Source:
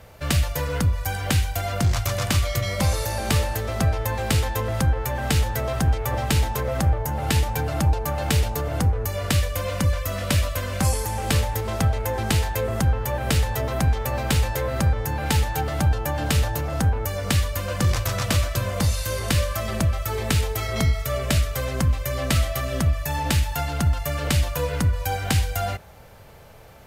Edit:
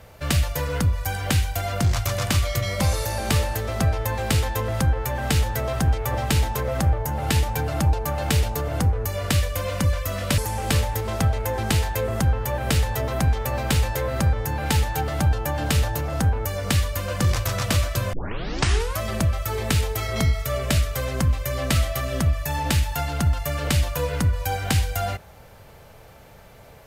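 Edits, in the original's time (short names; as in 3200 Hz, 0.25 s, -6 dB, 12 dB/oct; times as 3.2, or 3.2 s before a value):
10.38–10.98 cut
18.73 tape start 0.87 s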